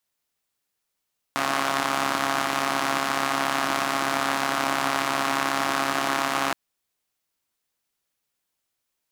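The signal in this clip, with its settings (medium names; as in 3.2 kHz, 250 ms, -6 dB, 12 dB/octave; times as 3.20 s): four-cylinder engine model, steady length 5.17 s, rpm 4100, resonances 310/740/1100 Hz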